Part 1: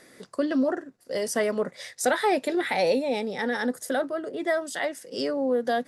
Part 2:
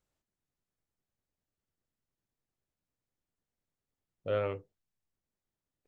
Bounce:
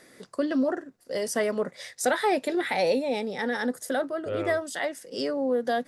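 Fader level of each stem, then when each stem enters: −1.0, −0.5 decibels; 0.00, 0.00 seconds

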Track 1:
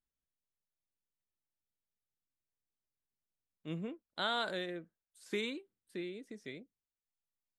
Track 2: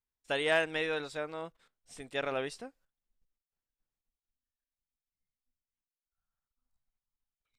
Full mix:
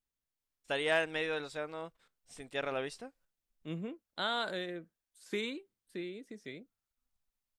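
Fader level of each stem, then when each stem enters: +0.5, −2.0 decibels; 0.00, 0.40 seconds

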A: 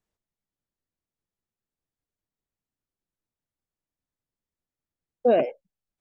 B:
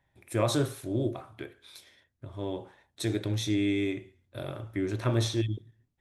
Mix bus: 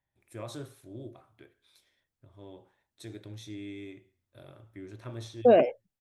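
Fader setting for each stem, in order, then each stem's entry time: +0.5, −14.0 decibels; 0.20, 0.00 seconds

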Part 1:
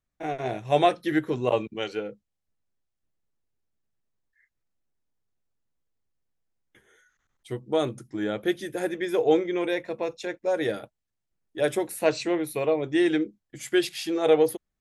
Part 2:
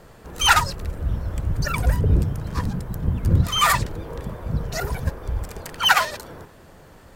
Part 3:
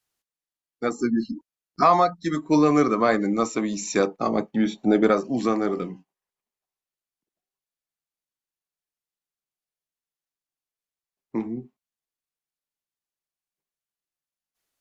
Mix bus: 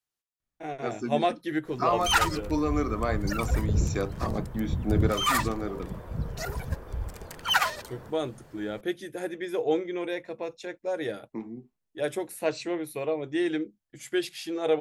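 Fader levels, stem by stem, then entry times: −5.0, −7.0, −9.0 decibels; 0.40, 1.65, 0.00 seconds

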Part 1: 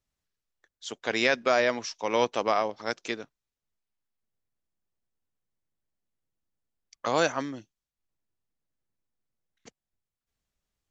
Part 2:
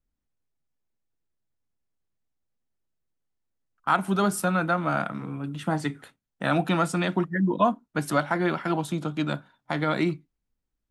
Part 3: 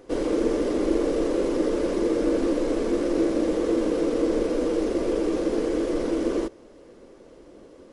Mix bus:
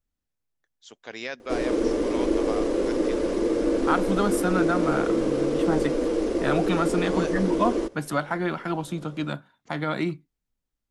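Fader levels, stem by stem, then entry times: −10.0, −2.0, −0.5 decibels; 0.00, 0.00, 1.40 seconds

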